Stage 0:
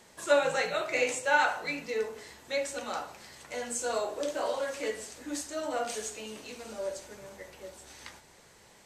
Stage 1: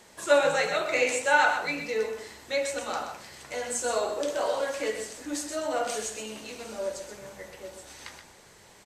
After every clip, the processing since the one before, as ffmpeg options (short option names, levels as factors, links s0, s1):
-filter_complex "[0:a]bandreject=f=60:t=h:w=6,bandreject=f=120:t=h:w=6,bandreject=f=180:t=h:w=6,bandreject=f=240:t=h:w=6,asplit=2[s0][s1];[s1]aecho=0:1:126:0.398[s2];[s0][s2]amix=inputs=2:normalize=0,volume=1.41"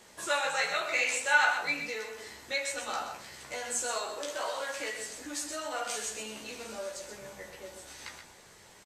-filter_complex "[0:a]acrossover=split=810[s0][s1];[s0]acompressor=threshold=0.0126:ratio=6[s2];[s1]asplit=2[s3][s4];[s4]adelay=15,volume=0.75[s5];[s3][s5]amix=inputs=2:normalize=0[s6];[s2][s6]amix=inputs=2:normalize=0,volume=0.75"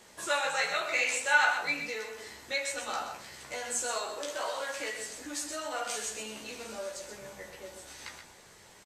-af anull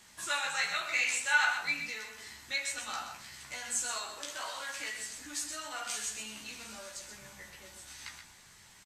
-af "equalizer=f=480:t=o:w=1.4:g=-14.5"